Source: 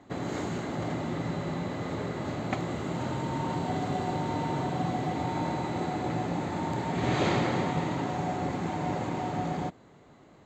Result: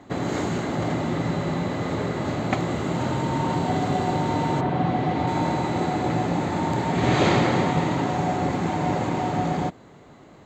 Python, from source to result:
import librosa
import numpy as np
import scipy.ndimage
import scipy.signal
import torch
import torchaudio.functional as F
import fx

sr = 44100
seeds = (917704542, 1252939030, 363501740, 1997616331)

y = fx.lowpass(x, sr, hz=fx.line((4.6, 2600.0), (5.26, 5000.0)), slope=12, at=(4.6, 5.26), fade=0.02)
y = F.gain(torch.from_numpy(y), 7.0).numpy()